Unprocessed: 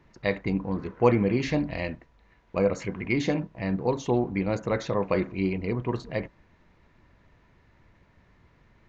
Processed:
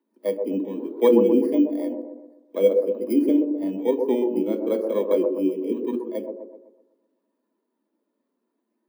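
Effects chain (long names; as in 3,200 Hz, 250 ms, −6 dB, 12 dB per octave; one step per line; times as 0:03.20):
samples in bit-reversed order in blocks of 16 samples
high-shelf EQ 3,200 Hz −6 dB
delay with a band-pass on its return 126 ms, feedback 56%, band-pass 570 Hz, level −3 dB
in parallel at −2 dB: downward compressor, threshold −32 dBFS, peak gain reduction 16.5 dB
on the sum: low-shelf EQ 290 Hz +8.5 dB
mains-hum notches 60/120/180/240/300/360/420/480/540 Hz
on a send at −20 dB: convolution reverb RT60 0.40 s, pre-delay 46 ms
on the sum: bit-depth reduction 10 bits, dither none
Butterworth high-pass 220 Hz 72 dB per octave
notch filter 730 Hz, Q 12
every bin expanded away from the loudest bin 1.5 to 1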